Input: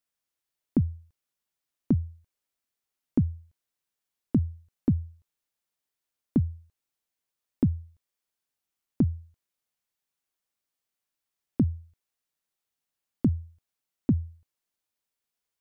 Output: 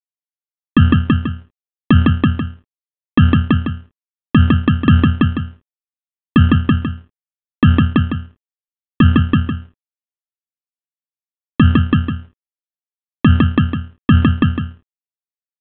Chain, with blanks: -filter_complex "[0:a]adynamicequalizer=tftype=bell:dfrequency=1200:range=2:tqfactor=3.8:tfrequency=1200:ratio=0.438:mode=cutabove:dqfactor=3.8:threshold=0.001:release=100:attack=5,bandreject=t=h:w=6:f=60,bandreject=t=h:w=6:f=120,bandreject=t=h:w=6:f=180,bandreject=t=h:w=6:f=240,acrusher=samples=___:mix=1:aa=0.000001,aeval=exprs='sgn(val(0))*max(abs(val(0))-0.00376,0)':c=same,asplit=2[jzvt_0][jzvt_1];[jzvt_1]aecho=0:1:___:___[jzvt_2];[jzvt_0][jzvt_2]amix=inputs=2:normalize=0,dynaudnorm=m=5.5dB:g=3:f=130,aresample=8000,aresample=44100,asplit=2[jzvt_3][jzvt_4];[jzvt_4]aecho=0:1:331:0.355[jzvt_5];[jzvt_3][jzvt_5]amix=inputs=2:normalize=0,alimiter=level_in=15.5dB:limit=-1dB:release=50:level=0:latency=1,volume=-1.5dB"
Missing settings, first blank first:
30, 156, 0.398